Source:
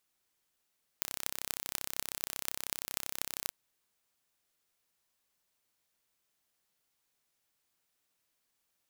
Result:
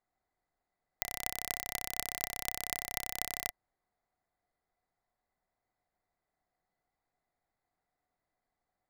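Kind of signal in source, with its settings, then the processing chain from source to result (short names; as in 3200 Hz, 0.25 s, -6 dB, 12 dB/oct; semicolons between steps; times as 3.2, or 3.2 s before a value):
pulse train 32.8/s, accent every 8, -4 dBFS 2.48 s
Wiener smoothing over 15 samples; low shelf 63 Hz +11 dB; small resonant body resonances 730/2000 Hz, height 13 dB, ringing for 35 ms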